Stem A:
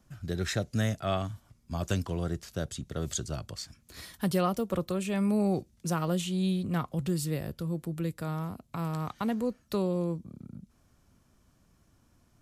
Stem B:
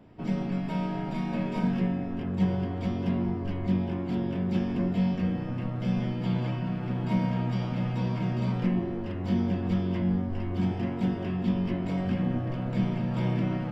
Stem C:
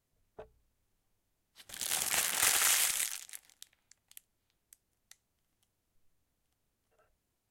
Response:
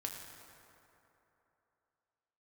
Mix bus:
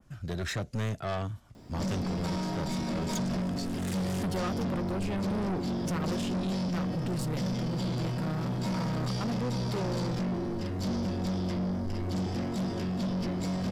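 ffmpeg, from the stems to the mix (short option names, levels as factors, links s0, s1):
-filter_complex "[0:a]adynamicequalizer=threshold=0.00251:dfrequency=5400:dqfactor=0.72:tfrequency=5400:tqfactor=0.72:attack=5:release=100:ratio=0.375:range=2:mode=cutabove:tftype=bell,volume=1.41,asplit=2[s0][s1];[1:a]aexciter=amount=8.5:drive=6:freq=4100,adelay=1550,volume=1.33[s2];[2:a]adelay=1450,volume=0.398[s3];[s1]apad=whole_len=394855[s4];[s3][s4]sidechaincompress=threshold=0.00631:ratio=8:attack=5.1:release=181[s5];[s0][s2][s5]amix=inputs=3:normalize=0,highshelf=f=9500:g=-10.5,asoftclip=type=tanh:threshold=0.0398"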